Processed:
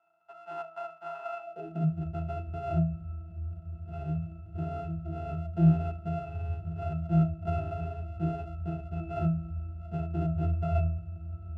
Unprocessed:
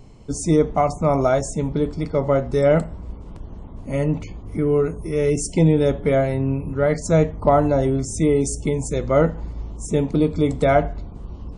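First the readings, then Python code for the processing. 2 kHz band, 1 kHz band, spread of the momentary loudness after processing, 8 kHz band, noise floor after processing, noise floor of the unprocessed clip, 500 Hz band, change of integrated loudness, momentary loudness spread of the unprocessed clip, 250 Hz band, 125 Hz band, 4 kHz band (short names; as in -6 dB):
-19.0 dB, -13.5 dB, 13 LU, under -40 dB, -49 dBFS, -37 dBFS, -20.5 dB, -12.5 dB, 16 LU, -11.5 dB, -6.5 dB, under -20 dB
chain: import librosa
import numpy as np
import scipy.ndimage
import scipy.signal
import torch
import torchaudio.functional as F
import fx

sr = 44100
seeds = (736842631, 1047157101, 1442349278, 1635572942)

y = np.r_[np.sort(x[:len(x) // 64 * 64].reshape(-1, 64), axis=1).ravel(), x[len(x) // 64 * 64:]]
y = fx.octave_resonator(y, sr, note='E', decay_s=0.38)
y = fx.filter_sweep_highpass(y, sr, from_hz=1000.0, to_hz=79.0, start_s=1.39, end_s=2.04, q=4.3)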